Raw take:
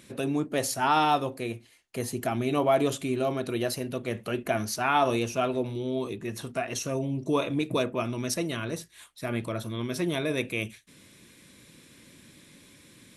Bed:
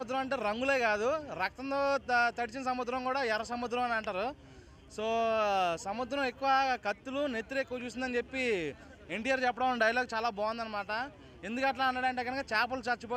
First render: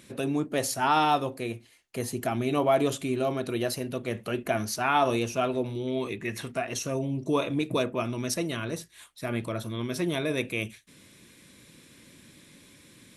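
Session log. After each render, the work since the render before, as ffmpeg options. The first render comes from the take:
-filter_complex "[0:a]asettb=1/sr,asplit=3[a][b][c];[a]atrim=end=5.874[d];[b]atrim=start=5.87:end=6.55,asetpts=PTS-STARTPTS,afade=t=in:d=0.004:c=qsin,afade=t=out:st=0.676:d=0.004:c=qsin,equalizer=f=2.1k:w=1.8:g=11[e];[c]atrim=start=6.546[f];[d][e]acrossfade=d=0.004:c1=hsin:c2=qsin[g];[g][f]acrossfade=d=0.004:c1=qsin:c2=hsin"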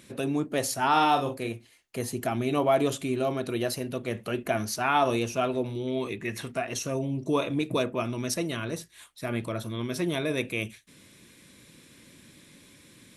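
-filter_complex "[0:a]asettb=1/sr,asplit=3[a][b][c];[a]atrim=end=0.884[d];[b]atrim=start=0.88:end=1.49,asetpts=PTS-STARTPTS,afade=t=in:d=0.004:c=qsin,afade=t=out:st=0.606:d=0.004:c=qsin,asplit=2[e][f];[f]adelay=43,volume=-7dB[g];[e][g]amix=inputs=2:normalize=0,atrim=end_sample=26901[h];[c]atrim=start=1.486[i];[d][h]acrossfade=d=0.004:c1=hsin:c2=qsin[j];[j][i]acrossfade=d=0.004:c1=qsin:c2=hsin"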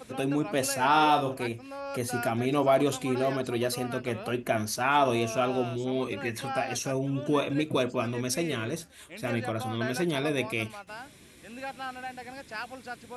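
-filter_complex "[1:a]volume=-7.5dB[a];[0:a][a]amix=inputs=2:normalize=0"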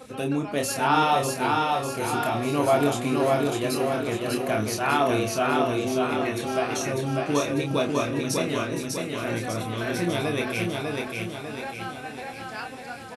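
-filter_complex "[0:a]asplit=2[a][b];[b]adelay=28,volume=-5dB[c];[a][c]amix=inputs=2:normalize=0,asplit=2[d][e];[e]aecho=0:1:598|1196|1794|2392|2990|3588|4186:0.708|0.361|0.184|0.0939|0.0479|0.0244|0.0125[f];[d][f]amix=inputs=2:normalize=0"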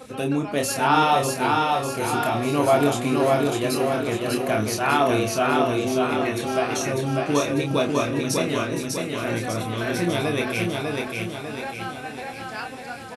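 -af "volume=2.5dB"

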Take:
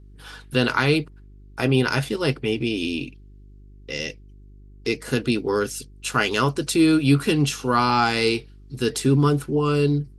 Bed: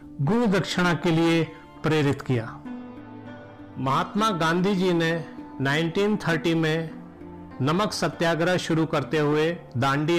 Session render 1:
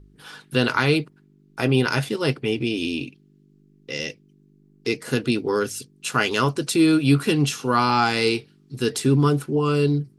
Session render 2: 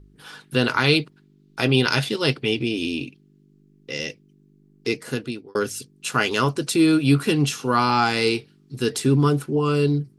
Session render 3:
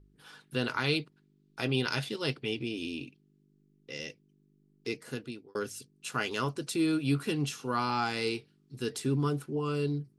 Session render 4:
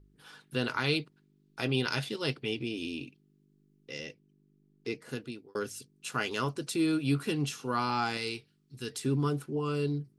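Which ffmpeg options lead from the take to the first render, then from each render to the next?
-af "bandreject=f=50:t=h:w=4,bandreject=f=100:t=h:w=4"
-filter_complex "[0:a]asettb=1/sr,asplit=3[a][b][c];[a]atrim=end=0.844[d];[b]atrim=start=0.84:end=2.62,asetpts=PTS-STARTPTS,afade=t=in:d=0.004:c=qsin,afade=t=out:st=1.776:d=0.004:c=qsin,equalizer=f=3.8k:t=o:w=1.2:g=8[e];[c]atrim=start=2.616[f];[d][e]acrossfade=d=0.004:c1=hsin:c2=qsin[g];[g][f]acrossfade=d=0.004:c1=qsin:c2=hsin,asplit=2[h][i];[h]atrim=end=5.55,asetpts=PTS-STARTPTS,afade=t=out:st=4.92:d=0.63[j];[i]atrim=start=5.55,asetpts=PTS-STARTPTS,afade=t=in:d=0.004:c=hsin[k];[j][k]concat=n=2:v=0:a=1"
-af "volume=-11dB"
-filter_complex "[0:a]asettb=1/sr,asplit=3[a][b][c];[a]atrim=end=4.004[d];[b]atrim=start=4:end=5.09,asetpts=PTS-STARTPTS,afade=t=in:d=0.004:c=qsin,afade=t=out:st=1.086:d=0.004:c=qsin,highshelf=f=4.4k:g=-7.5[e];[c]atrim=start=5.086[f];[d][e]acrossfade=d=0.004:c1=hsin:c2=qsin[g];[g][f]acrossfade=d=0.004:c1=qsin:c2=hsin,asettb=1/sr,asplit=3[h][i][j];[h]atrim=end=8.174[k];[i]atrim=start=8.17:end=9.03,asetpts=PTS-STARTPTS,afade=t=in:d=0.004:c=qsin,afade=t=out:st=0.856:d=0.004:c=qsin,equalizer=f=430:w=0.38:g=-6.5[l];[j]atrim=start=9.026[m];[k][l]acrossfade=d=0.004:c1=hsin:c2=qsin[n];[n][m]acrossfade=d=0.004:c1=qsin:c2=hsin"

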